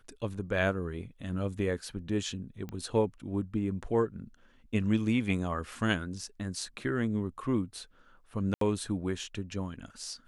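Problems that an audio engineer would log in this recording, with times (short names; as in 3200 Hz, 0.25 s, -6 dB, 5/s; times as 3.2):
2.69 pop -27 dBFS
8.54–8.61 gap 73 ms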